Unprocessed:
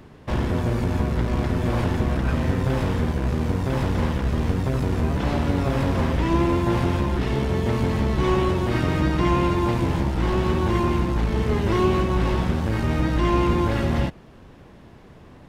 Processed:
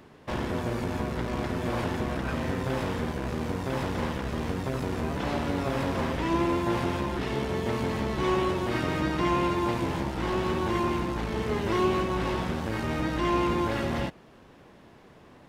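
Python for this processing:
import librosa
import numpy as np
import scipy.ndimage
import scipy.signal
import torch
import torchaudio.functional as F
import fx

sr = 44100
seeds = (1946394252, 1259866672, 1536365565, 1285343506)

y = fx.low_shelf(x, sr, hz=150.0, db=-12.0)
y = y * librosa.db_to_amplitude(-2.5)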